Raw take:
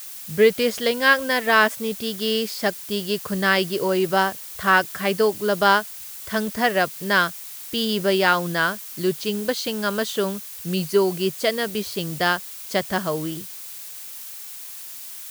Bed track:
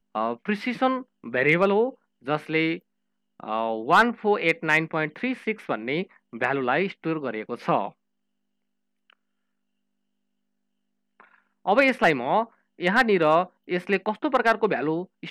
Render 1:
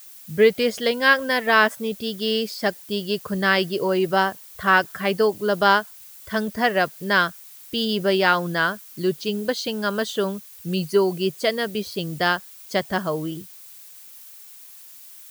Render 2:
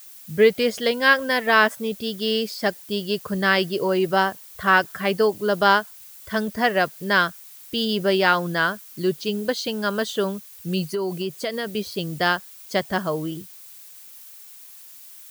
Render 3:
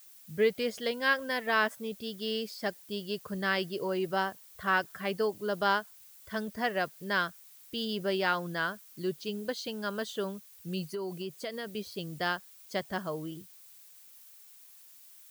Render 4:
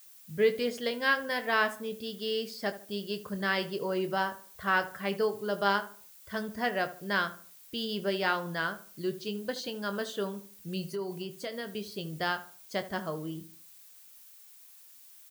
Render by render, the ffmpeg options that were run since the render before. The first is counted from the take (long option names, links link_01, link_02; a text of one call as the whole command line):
ffmpeg -i in.wav -af "afftdn=noise_reduction=9:noise_floor=-37" out.wav
ffmpeg -i in.wav -filter_complex "[0:a]asettb=1/sr,asplit=3[link_01][link_02][link_03];[link_01]atrim=end=10.834[link_04];[link_02]atrim=start=10.83:end=11.7,asetpts=PTS-STARTPTS,afade=type=in:duration=0.004:curve=qsin,afade=type=out:start_time=0.866:duration=0.004:curve=qsin,acompressor=threshold=-22dB:ratio=6:attack=3.2:release=140:knee=1:detection=peak[link_05];[link_03]atrim=start=11.696[link_06];[link_04][link_05]acrossfade=duration=0.004:curve1=hsin:curve2=qsin[link_07];[link_07][link_06]acrossfade=duration=0.004:curve1=qsin:curve2=hsin" out.wav
ffmpeg -i in.wav -af "volume=-10.5dB" out.wav
ffmpeg -i in.wav -filter_complex "[0:a]asplit=2[link_01][link_02];[link_02]adelay=25,volume=-10.5dB[link_03];[link_01][link_03]amix=inputs=2:normalize=0,asplit=2[link_04][link_05];[link_05]adelay=75,lowpass=frequency=1600:poles=1,volume=-13dB,asplit=2[link_06][link_07];[link_07]adelay=75,lowpass=frequency=1600:poles=1,volume=0.37,asplit=2[link_08][link_09];[link_09]adelay=75,lowpass=frequency=1600:poles=1,volume=0.37,asplit=2[link_10][link_11];[link_11]adelay=75,lowpass=frequency=1600:poles=1,volume=0.37[link_12];[link_04][link_06][link_08][link_10][link_12]amix=inputs=5:normalize=0" out.wav